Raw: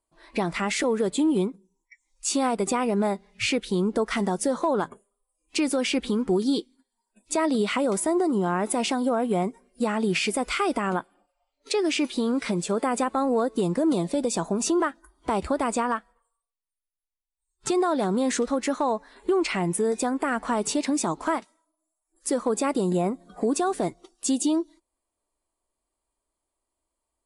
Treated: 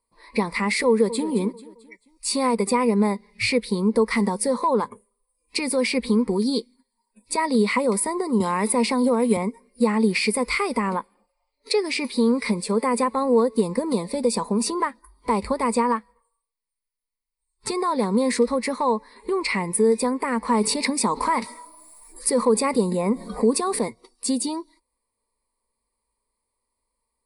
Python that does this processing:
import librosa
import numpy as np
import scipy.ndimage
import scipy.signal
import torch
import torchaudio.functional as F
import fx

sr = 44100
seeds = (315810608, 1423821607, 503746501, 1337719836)

y = fx.echo_throw(x, sr, start_s=0.87, length_s=0.42, ms=220, feedback_pct=45, wet_db=-13.5)
y = fx.band_squash(y, sr, depth_pct=70, at=(8.4, 9.37))
y = fx.env_flatten(y, sr, amount_pct=50, at=(20.54, 23.79))
y = fx.ripple_eq(y, sr, per_octave=0.92, db=14)